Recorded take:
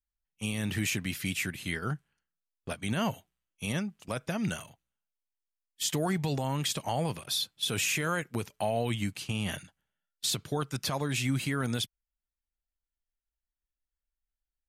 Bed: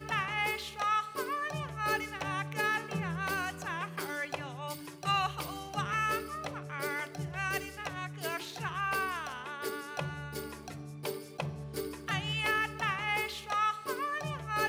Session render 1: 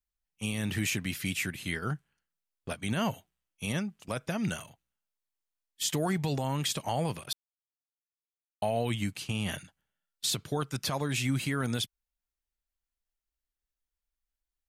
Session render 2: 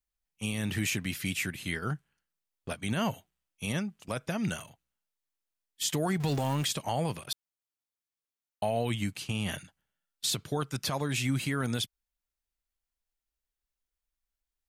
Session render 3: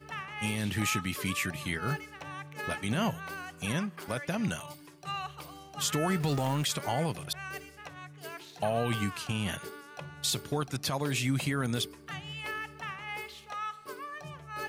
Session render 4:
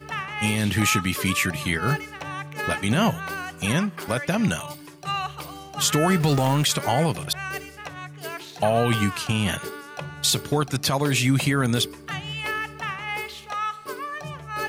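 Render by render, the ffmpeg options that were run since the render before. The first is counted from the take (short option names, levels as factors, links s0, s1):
-filter_complex "[0:a]asplit=3[s0][s1][s2];[s0]atrim=end=7.33,asetpts=PTS-STARTPTS,afade=t=out:st=7.326:d=0.004:c=hsin[s3];[s1]atrim=start=7.33:end=8.62,asetpts=PTS-STARTPTS,volume=0[s4];[s2]atrim=start=8.62,asetpts=PTS-STARTPTS,afade=t=in:d=0.004:c=hsin[s5];[s3][s4][s5]concat=n=3:v=0:a=1"
-filter_complex "[0:a]asettb=1/sr,asplit=3[s0][s1][s2];[s0]atrim=end=6.204[s3];[s1]atrim=start=6.2:end=6.65,asetpts=PTS-STARTPTS,afade=t=in:d=0.004:c=qsin,afade=t=out:st=0.446:d=0.004:c=qsin,aeval=exprs='val(0)+0.5*0.015*sgn(val(0))':c=same[s4];[s2]atrim=start=6.646[s5];[s3][s4]acrossfade=d=0.004:c1=hsin:c2=qsin[s6];[s6][s5]acrossfade=d=0.004:c1=qsin:c2=hsin"
-filter_complex "[1:a]volume=0.447[s0];[0:a][s0]amix=inputs=2:normalize=0"
-af "volume=2.82"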